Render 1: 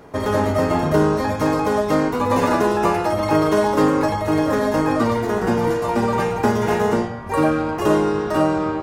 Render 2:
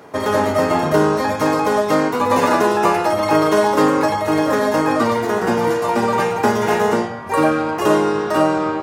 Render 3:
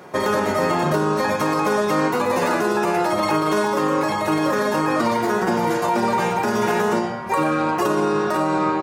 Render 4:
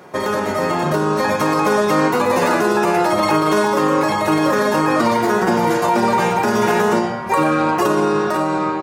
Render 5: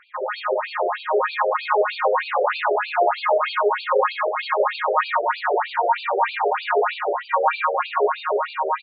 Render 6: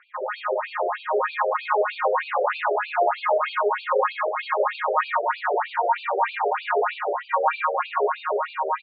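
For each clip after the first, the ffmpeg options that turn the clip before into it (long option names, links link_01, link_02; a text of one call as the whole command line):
ffmpeg -i in.wav -af "highpass=100,lowshelf=frequency=320:gain=-7,volume=4.5dB" out.wav
ffmpeg -i in.wav -af "aecho=1:1:5.5:0.52,alimiter=limit=-11dB:level=0:latency=1:release=77" out.wav
ffmpeg -i in.wav -af "dynaudnorm=framelen=430:gausssize=5:maxgain=4dB" out.wav
ffmpeg -i in.wav -filter_complex "[0:a]asplit=2[link_01][link_02];[link_02]aecho=0:1:139.9|183.7:0.891|0.355[link_03];[link_01][link_03]amix=inputs=2:normalize=0,afftfilt=real='re*between(b*sr/1024,510*pow(3400/510,0.5+0.5*sin(2*PI*3.2*pts/sr))/1.41,510*pow(3400/510,0.5+0.5*sin(2*PI*3.2*pts/sr))*1.41)':imag='im*between(b*sr/1024,510*pow(3400/510,0.5+0.5*sin(2*PI*3.2*pts/sr))/1.41,510*pow(3400/510,0.5+0.5*sin(2*PI*3.2*pts/sr))*1.41)':win_size=1024:overlap=0.75" out.wav
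ffmpeg -i in.wav -af "highpass=330,lowpass=3100,volume=-2dB" out.wav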